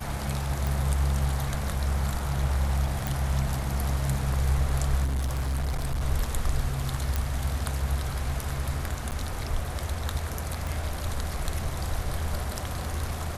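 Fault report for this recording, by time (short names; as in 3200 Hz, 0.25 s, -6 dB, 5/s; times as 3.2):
0.67 pop
3.07 pop
5.04–6.03 clipped -24.5 dBFS
7.16 pop
9.11–9.12 gap 8.9 ms
10.67 pop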